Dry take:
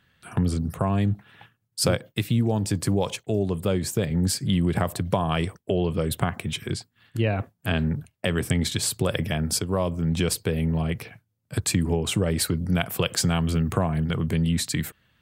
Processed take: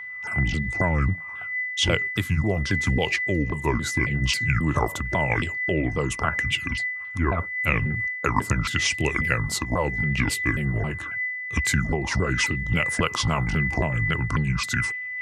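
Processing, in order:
pitch shifter swept by a sawtooth −9 semitones, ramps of 271 ms
steady tone 2,000 Hz −35 dBFS
auto-filter bell 0.83 Hz 970–2,700 Hz +12 dB

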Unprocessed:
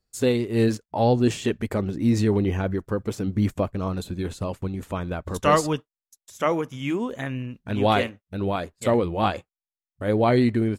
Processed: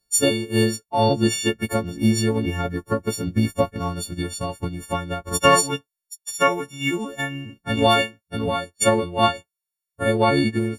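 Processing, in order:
every partial snapped to a pitch grid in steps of 4 semitones
transient designer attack +7 dB, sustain −4 dB
level −1 dB

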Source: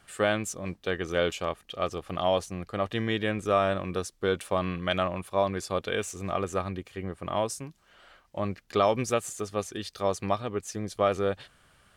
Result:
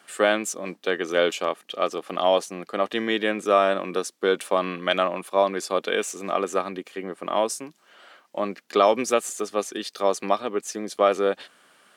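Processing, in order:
high-pass filter 230 Hz 24 dB per octave
level +5.5 dB

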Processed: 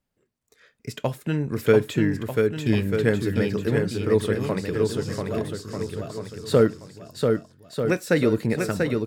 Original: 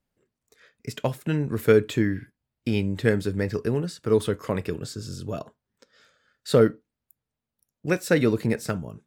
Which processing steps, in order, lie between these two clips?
de-essing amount 60%
on a send: bouncing-ball delay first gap 690 ms, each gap 0.8×, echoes 5

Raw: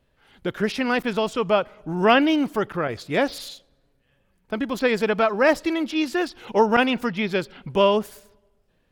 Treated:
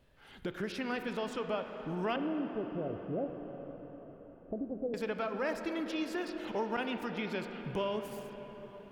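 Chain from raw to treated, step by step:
0:02.16–0:04.94: Butterworth low-pass 760 Hz 72 dB per octave
downward compressor 2.5 to 1, threshold −41 dBFS, peak gain reduction 19 dB
convolution reverb RT60 5.5 s, pre-delay 13 ms, DRR 5.5 dB

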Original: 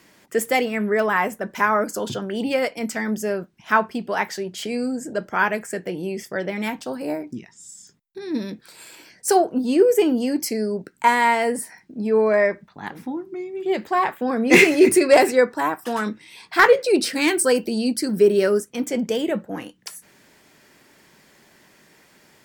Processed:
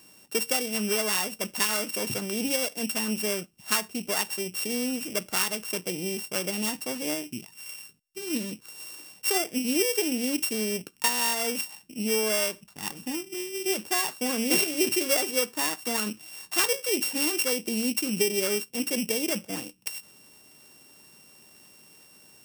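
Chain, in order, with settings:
samples sorted by size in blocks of 16 samples
bass and treble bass +1 dB, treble +11 dB
downward compressor 3 to 1, threshold −18 dBFS, peak gain reduction 12.5 dB
level −5 dB

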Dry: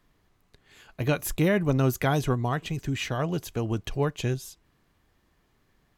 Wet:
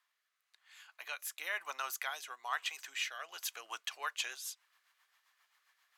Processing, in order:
high-pass filter 1,000 Hz 24 dB per octave
speech leveller within 3 dB 0.5 s
rotating-speaker cabinet horn 1 Hz, later 7.5 Hz, at 0:03.18

